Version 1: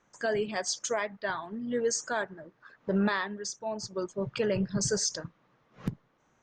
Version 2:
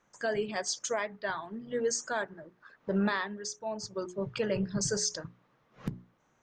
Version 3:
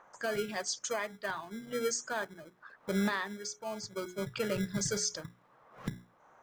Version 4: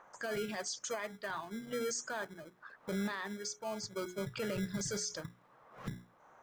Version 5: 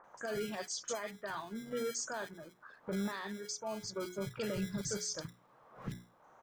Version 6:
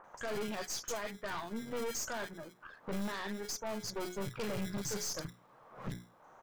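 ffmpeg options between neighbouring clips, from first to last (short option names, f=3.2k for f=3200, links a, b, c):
-af "bandreject=f=60:t=h:w=6,bandreject=f=120:t=h:w=6,bandreject=f=180:t=h:w=6,bandreject=f=240:t=h:w=6,bandreject=f=300:t=h:w=6,bandreject=f=360:t=h:w=6,bandreject=f=420:t=h:w=6,volume=-1.5dB"
-filter_complex "[0:a]acrossover=split=540|1400[a][b][c];[a]acrusher=samples=24:mix=1:aa=0.000001[d];[b]acompressor=mode=upward:threshold=-43dB:ratio=2.5[e];[d][e][c]amix=inputs=3:normalize=0,volume=-2dB"
-af "alimiter=level_in=5.5dB:limit=-24dB:level=0:latency=1:release=22,volume=-5.5dB"
-filter_complex "[0:a]acrossover=split=1900[a][b];[b]adelay=40[c];[a][c]amix=inputs=2:normalize=0"
-af "aeval=exprs='(tanh(112*val(0)+0.65)-tanh(0.65))/112':c=same,volume=6.5dB"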